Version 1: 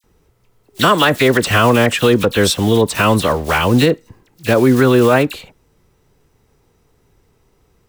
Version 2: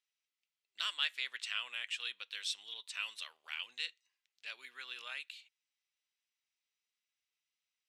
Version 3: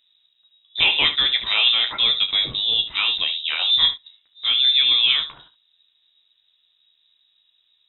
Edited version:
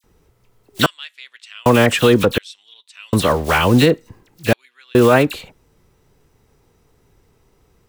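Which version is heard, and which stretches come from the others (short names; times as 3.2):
1
0.86–1.66 from 2
2.38–3.13 from 2
4.53–4.95 from 2
not used: 3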